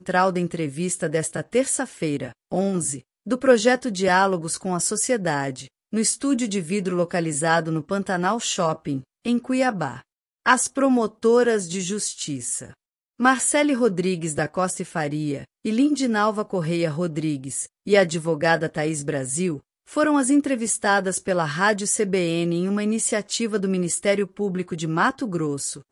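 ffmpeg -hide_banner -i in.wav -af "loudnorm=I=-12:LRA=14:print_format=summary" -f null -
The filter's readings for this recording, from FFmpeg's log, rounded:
Input Integrated:    -22.8 LUFS
Input True Peak:      -3.4 dBTP
Input LRA:             2.0 LU
Input Threshold:     -33.0 LUFS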